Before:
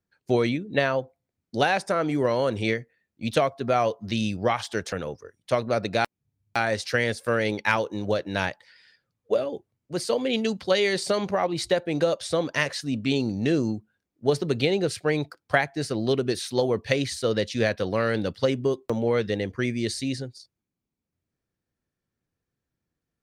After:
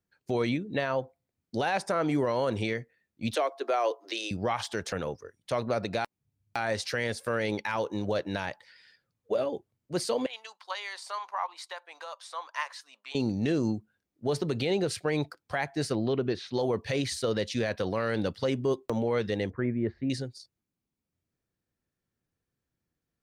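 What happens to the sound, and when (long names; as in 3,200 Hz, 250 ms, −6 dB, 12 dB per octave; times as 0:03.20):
0:03.35–0:04.31: Butterworth high-pass 300 Hz 72 dB per octave
0:10.26–0:13.15: four-pole ladder high-pass 890 Hz, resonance 65%
0:15.95–0:16.54: high-frequency loss of the air 210 metres
0:19.50–0:20.10: low-pass filter 1,600 Hz 24 dB per octave
whole clip: dynamic equaliser 930 Hz, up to +4 dB, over −40 dBFS, Q 2; brickwall limiter −17 dBFS; level −1.5 dB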